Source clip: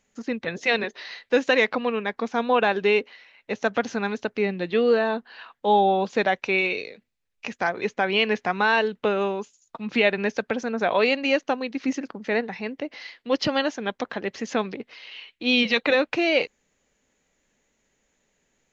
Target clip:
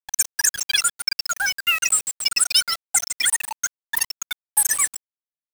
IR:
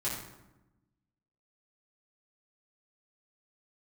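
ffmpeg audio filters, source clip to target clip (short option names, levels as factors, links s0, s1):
-filter_complex "[0:a]asetrate=149058,aresample=44100,asplit=2[s0][s1];[s1]aecho=0:1:141|282|423|564|705|846:0.316|0.161|0.0823|0.0419|0.0214|0.0109[s2];[s0][s2]amix=inputs=2:normalize=0,crystalizer=i=5.5:c=0,afftfilt=real='re*gte(hypot(re,im),0.562)':imag='im*gte(hypot(re,im),0.562)':win_size=1024:overlap=0.75,acompressor=threshold=0.0631:ratio=2,equalizer=f=125:t=o:w=1:g=-9,equalizer=f=250:t=o:w=1:g=7,equalizer=f=2000:t=o:w=1:g=-3,equalizer=f=4000:t=o:w=1:g=6,acrusher=bits=4:mix=0:aa=0.000001"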